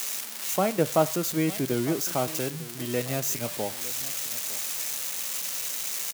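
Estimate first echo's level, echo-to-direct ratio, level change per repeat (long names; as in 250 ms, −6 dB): −18.0 dB, −18.0 dB, −15.5 dB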